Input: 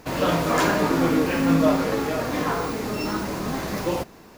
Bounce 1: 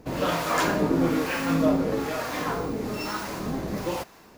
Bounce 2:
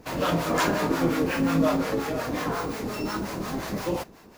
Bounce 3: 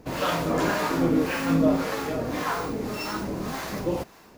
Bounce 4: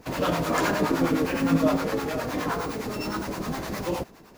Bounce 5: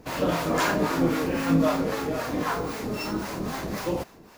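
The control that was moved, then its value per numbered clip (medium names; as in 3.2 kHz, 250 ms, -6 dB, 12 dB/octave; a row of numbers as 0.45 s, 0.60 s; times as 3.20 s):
harmonic tremolo, rate: 1.1 Hz, 5.6 Hz, 1.8 Hz, 9.7 Hz, 3.8 Hz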